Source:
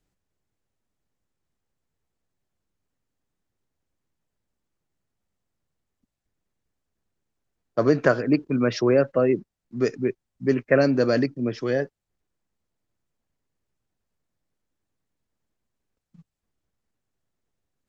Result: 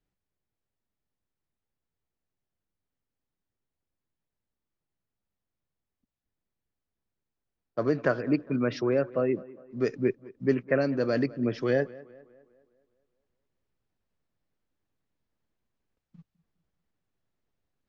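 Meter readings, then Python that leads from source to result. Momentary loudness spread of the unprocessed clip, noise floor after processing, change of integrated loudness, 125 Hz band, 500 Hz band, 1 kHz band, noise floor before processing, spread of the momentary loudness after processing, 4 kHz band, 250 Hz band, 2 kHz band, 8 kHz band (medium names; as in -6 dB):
9 LU, under -85 dBFS, -5.5 dB, -5.0 dB, -5.5 dB, -6.0 dB, -83 dBFS, 7 LU, -7.5 dB, -5.0 dB, -5.5 dB, no reading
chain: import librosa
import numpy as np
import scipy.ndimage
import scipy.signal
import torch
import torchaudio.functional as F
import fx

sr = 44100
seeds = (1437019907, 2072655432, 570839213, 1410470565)

p1 = scipy.signal.sosfilt(scipy.signal.butter(2, 4700.0, 'lowpass', fs=sr, output='sos'), x)
p2 = fx.rider(p1, sr, range_db=10, speed_s=0.5)
p3 = p2 + fx.echo_tape(p2, sr, ms=204, feedback_pct=53, wet_db=-19, lp_hz=2400.0, drive_db=9.0, wow_cents=10, dry=0)
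y = p3 * librosa.db_to_amplitude(-4.5)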